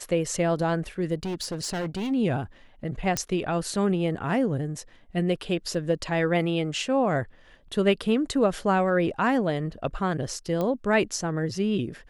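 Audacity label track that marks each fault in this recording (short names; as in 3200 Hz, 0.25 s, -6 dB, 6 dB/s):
1.230000	2.120000	clipped -26.5 dBFS
3.170000	3.170000	pop -10 dBFS
5.740000	5.740000	gap 3.2 ms
10.610000	10.610000	pop -16 dBFS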